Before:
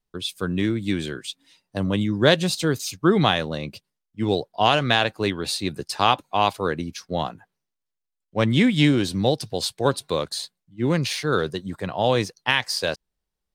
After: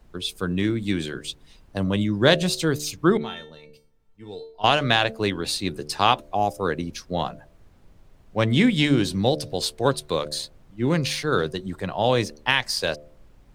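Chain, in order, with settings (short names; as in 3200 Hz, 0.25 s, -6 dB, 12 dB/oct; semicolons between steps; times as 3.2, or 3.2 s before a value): 6.34–6.6 spectral gain 840–4900 Hz -18 dB; added noise brown -50 dBFS; 3.17–4.64 resonator 450 Hz, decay 0.31 s, harmonics all, mix 90%; de-hum 74.3 Hz, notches 9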